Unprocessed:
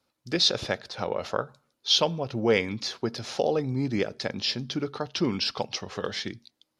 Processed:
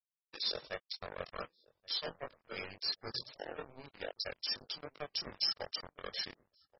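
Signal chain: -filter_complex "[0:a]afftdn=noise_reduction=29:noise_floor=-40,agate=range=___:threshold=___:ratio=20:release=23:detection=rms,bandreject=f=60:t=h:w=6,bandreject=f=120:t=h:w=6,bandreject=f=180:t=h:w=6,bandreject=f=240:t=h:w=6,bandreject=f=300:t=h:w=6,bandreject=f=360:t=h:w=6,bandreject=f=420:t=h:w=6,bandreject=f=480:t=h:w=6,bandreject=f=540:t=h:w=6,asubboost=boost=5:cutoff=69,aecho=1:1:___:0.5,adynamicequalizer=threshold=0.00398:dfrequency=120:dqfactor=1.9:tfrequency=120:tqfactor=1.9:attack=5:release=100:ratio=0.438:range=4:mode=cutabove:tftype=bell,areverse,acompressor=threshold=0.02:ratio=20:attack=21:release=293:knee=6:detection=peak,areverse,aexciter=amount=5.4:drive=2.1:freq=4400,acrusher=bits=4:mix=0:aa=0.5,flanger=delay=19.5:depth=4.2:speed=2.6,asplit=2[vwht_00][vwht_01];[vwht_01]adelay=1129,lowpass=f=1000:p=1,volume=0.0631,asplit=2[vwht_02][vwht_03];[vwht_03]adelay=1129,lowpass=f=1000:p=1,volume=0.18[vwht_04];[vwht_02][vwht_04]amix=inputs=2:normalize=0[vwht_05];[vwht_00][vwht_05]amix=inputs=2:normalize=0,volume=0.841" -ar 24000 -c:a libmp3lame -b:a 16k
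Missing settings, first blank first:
0.0251, 0.00355, 1.7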